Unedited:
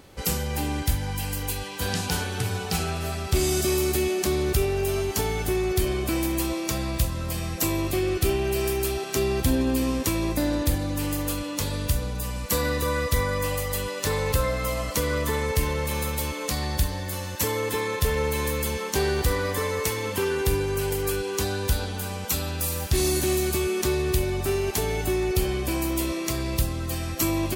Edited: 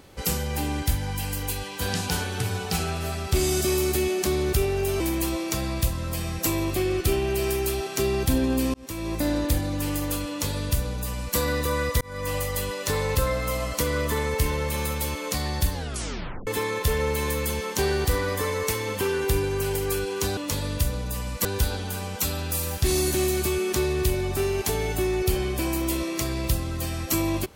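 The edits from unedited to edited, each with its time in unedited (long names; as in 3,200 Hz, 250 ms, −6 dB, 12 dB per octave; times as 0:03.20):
0:05.00–0:06.17: remove
0:09.91–0:10.43: fade in
0:11.46–0:12.54: duplicate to 0:21.54
0:13.18–0:13.52: fade in
0:16.90: tape stop 0.74 s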